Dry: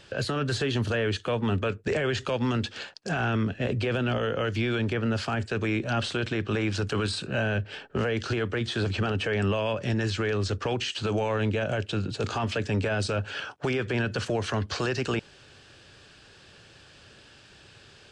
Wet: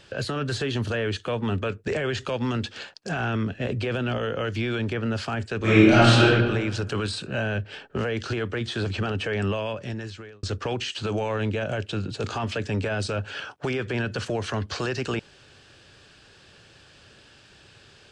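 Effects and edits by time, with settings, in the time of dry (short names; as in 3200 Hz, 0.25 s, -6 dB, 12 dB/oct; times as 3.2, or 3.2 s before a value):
5.58–6.25 reverb throw, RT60 1.3 s, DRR -12 dB
9.49–10.43 fade out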